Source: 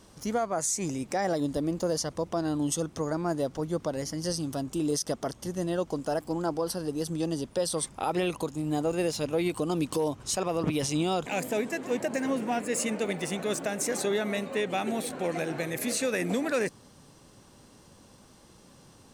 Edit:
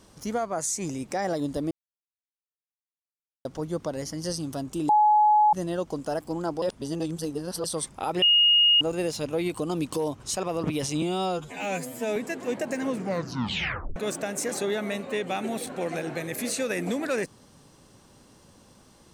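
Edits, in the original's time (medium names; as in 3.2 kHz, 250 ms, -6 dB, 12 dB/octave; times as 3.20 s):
1.71–3.45 s: mute
4.89–5.53 s: bleep 846 Hz -15.5 dBFS
6.62–7.64 s: reverse
8.22–8.81 s: bleep 2.86 kHz -15.5 dBFS
11.02–11.59 s: stretch 2×
12.31 s: tape stop 1.08 s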